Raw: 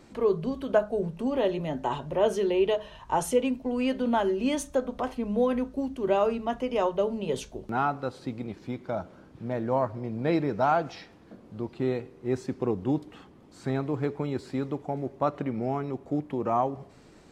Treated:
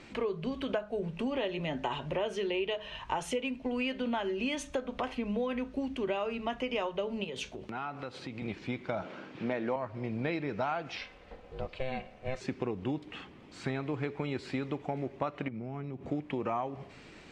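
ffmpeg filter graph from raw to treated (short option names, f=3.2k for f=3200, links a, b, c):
-filter_complex "[0:a]asettb=1/sr,asplit=3[a][b][c];[a]atrim=end=7.244[d];[b]atrim=start=7.24:end=8.42,asetpts=PTS-STARTPTS,afade=t=in:d=0.004:c=qsin,afade=t=out:st=1.176:d=0.004:c=qsin,highpass=68,acompressor=threshold=-38dB:ratio=4:attack=3.2:release=140:knee=1:detection=peak[e];[c]atrim=start=8.416[f];[d][e]acrossfade=d=0.004:c1=hsin:c2=qsin[g];[g][f]acrossfade=d=0.004:c1=qsin:c2=hsin,asettb=1/sr,asplit=3[h][i][j];[h]atrim=end=9.024[k];[i]atrim=start=9.02:end=9.76,asetpts=PTS-STARTPTS,afade=t=in:d=0.004:c=qsin,afade=t=out:st=0.736:d=0.004:c=qsin,acontrast=50,highpass=210,lowpass=6.7k[l];[j]atrim=start=9.756[m];[k][l]acrossfade=d=0.004:c1=hsin:c2=qsin[n];[n][m]acrossfade=d=0.004:c1=qsin:c2=hsin,asettb=1/sr,asplit=3[o][p][q];[o]atrim=end=10.974[r];[p]atrim=start=10.97:end=12.41,asetpts=PTS-STARTPTS,afade=t=in:d=0.004:c=qsin,afade=t=out:st=1.436:d=0.004:c=qsin,aecho=1:1:3.9:0.45,atrim=end_sample=63504,aeval=exprs='val(0)*sin(2*PI*260*n/s)':c=same[s];[q]atrim=start=12.406[t];[r][s]acrossfade=d=0.004:c1=hsin:c2=qsin[u];[u][t]acrossfade=d=0.004:c1=qsin:c2=hsin,asettb=1/sr,asplit=3[v][w][x];[v]atrim=end=15.484[y];[w]atrim=start=15.48:end=16.1,asetpts=PTS-STARTPTS,afade=t=in:d=0.004:c=qsin,afade=t=out:st=0.616:d=0.004:c=qsin,equalizer=f=140:t=o:w=2.6:g=12,acompressor=threshold=-36dB:ratio=8:attack=3.2:release=140:knee=1:detection=peak[z];[x]atrim=start=16.096[aa];[y][z]acrossfade=d=0.004:c1=hsin:c2=qsin[ab];[ab][aa]acrossfade=d=0.004:c1=qsin:c2=hsin,lowpass=8k,equalizer=f=2.5k:w=1.1:g=11.5,acompressor=threshold=-30dB:ratio=6"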